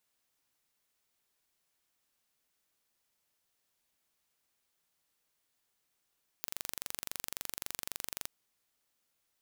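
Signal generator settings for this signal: pulse train 23.7/s, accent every 0, -10 dBFS 1.84 s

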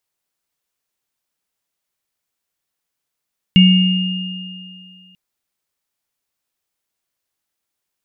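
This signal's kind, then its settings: sine partials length 1.59 s, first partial 184 Hz, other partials 2230/2830 Hz, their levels -19.5/-6.5 dB, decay 2.13 s, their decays 0.83/2.66 s, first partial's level -5 dB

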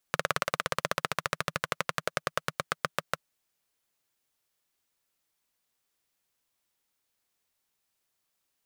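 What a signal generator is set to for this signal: single-cylinder engine model, changing speed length 3.13 s, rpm 2200, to 700, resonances 160/570/1200 Hz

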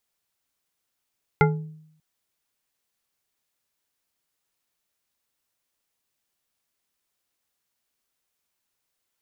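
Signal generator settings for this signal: glass hit bar, length 0.59 s, lowest mode 156 Hz, modes 5, decay 0.74 s, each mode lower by 1 dB, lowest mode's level -15 dB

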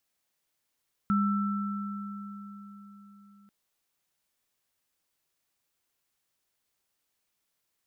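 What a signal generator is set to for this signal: sine partials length 2.39 s, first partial 202 Hz, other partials 1330 Hz, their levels -5 dB, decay 4.35 s, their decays 3.76 s, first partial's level -22.5 dB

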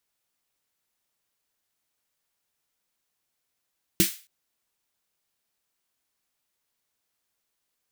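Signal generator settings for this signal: snare drum length 0.27 s, tones 190 Hz, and 330 Hz, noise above 1800 Hz, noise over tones -1 dB, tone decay 0.12 s, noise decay 0.35 s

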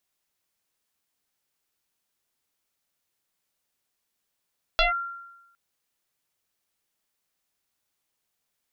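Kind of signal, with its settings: FM tone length 0.76 s, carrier 1380 Hz, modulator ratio 0.49, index 4.1, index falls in 0.14 s linear, decay 1.00 s, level -15.5 dB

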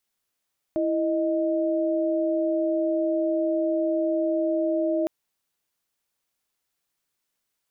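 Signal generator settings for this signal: chord E4/D#5 sine, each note -24 dBFS 4.31 s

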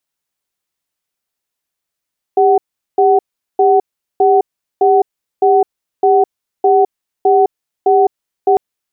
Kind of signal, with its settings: cadence 398 Hz, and 751 Hz, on 0.21 s, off 0.40 s, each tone -9.5 dBFS 6.20 s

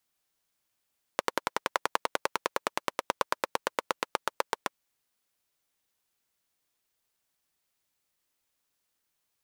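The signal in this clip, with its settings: single-cylinder engine model, changing speed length 3.58 s, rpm 1300, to 900, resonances 550/940 Hz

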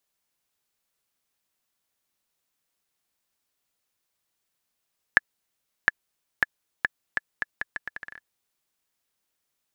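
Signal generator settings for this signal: bouncing ball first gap 0.71 s, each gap 0.77, 1720 Hz, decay 24 ms -1.5 dBFS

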